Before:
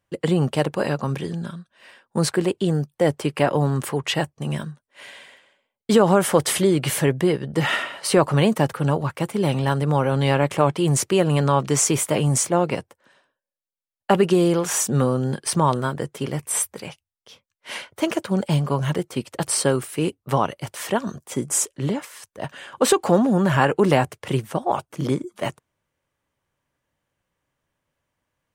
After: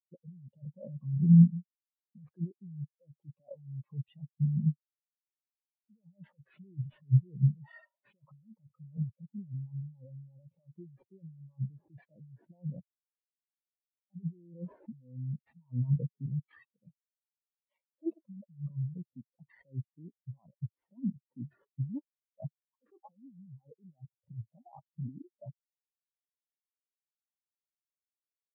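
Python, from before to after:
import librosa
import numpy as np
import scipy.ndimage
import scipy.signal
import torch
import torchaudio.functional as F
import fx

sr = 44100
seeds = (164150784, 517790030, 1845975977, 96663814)

y = fx.graphic_eq_15(x, sr, hz=(400, 1600, 4000, 10000), db=(-7, -9, -7, -6))
y = fx.sample_hold(y, sr, seeds[0], rate_hz=6400.0, jitter_pct=0)
y = fx.over_compress(y, sr, threshold_db=-29.0, ratio=-1.0)
y = fx.spectral_expand(y, sr, expansion=4.0)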